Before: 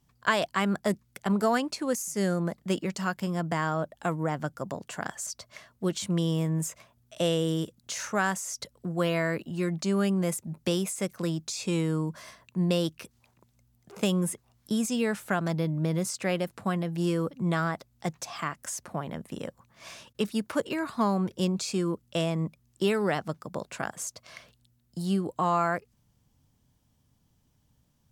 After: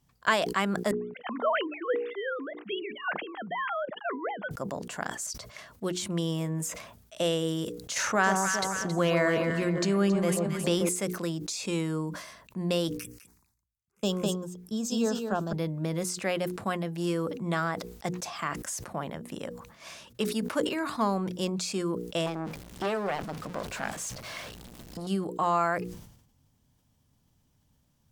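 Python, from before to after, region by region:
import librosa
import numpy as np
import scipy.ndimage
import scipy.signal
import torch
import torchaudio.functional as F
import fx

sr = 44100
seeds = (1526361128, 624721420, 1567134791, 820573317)

y = fx.chain(x, sr, fx.sine_speech(),
    fx.highpass(hz=740.0, slope=6), at=(0.91, 4.51))
y = fx.chain(y, sr, fx.high_shelf(hz=6300.0, db=-7.5),
    fx.echo_alternate(ms=136, hz=1100.0, feedback_pct=63, wet_db=-4.5),
    fx.env_flatten(amount_pct=50), at=(7.96, 10.89))
y = fx.chain(y, sr, fx.env_phaser(low_hz=460.0, high_hz=2100.0, full_db=-32.5),
    fx.echo_single(ms=204, db=-3.0),
    fx.band_widen(depth_pct=100), at=(12.97, 15.53))
y = fx.chain(y, sr, fx.zero_step(step_db=-35.0),
    fx.high_shelf(hz=8200.0, db=-9.0),
    fx.transformer_sat(knee_hz=1200.0), at=(22.26, 25.07))
y = fx.hum_notches(y, sr, base_hz=60, count=8)
y = fx.dynamic_eq(y, sr, hz=110.0, q=0.82, threshold_db=-44.0, ratio=4.0, max_db=-6)
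y = fx.sustainer(y, sr, db_per_s=71.0)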